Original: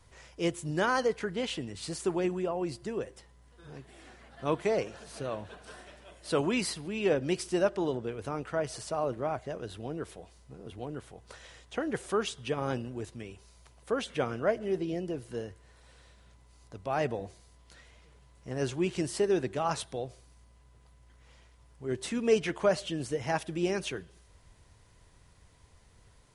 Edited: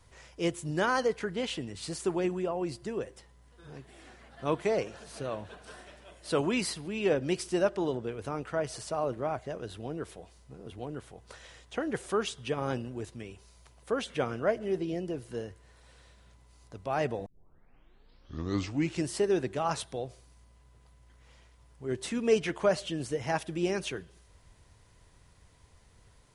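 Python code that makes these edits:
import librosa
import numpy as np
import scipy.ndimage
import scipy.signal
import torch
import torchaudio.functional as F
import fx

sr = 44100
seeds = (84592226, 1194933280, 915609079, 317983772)

y = fx.edit(x, sr, fx.tape_start(start_s=17.26, length_s=1.8), tone=tone)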